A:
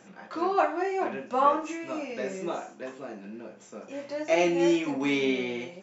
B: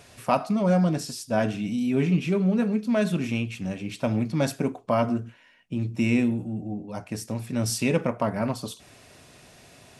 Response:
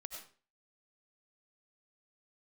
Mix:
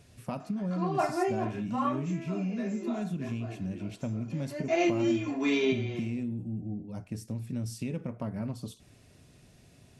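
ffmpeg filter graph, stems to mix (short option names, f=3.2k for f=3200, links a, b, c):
-filter_complex "[0:a]aecho=1:1:2.9:0.69,adelay=400,volume=-3dB[a];[1:a]equalizer=f=880:t=o:w=2.9:g=-13,acompressor=threshold=-31dB:ratio=6,highshelf=f=2k:g=-11,volume=1dB,asplit=2[b][c];[c]apad=whole_len=274675[d];[a][d]sidechaincompress=threshold=-37dB:ratio=8:attack=49:release=410[e];[e][b]amix=inputs=2:normalize=0"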